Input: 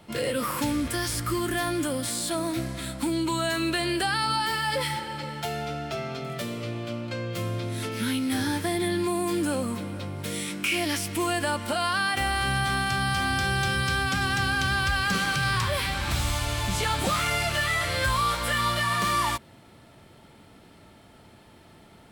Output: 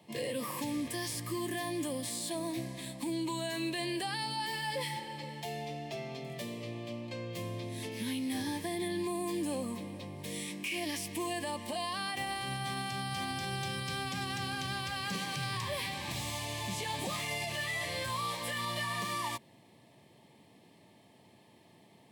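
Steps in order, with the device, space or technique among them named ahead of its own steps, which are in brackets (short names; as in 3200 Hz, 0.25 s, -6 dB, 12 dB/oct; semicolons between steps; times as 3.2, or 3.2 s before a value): PA system with an anti-feedback notch (HPF 110 Hz 24 dB/oct; Butterworth band-stop 1400 Hz, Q 2.8; limiter -19 dBFS, peak gain reduction 4 dB); gain -7.5 dB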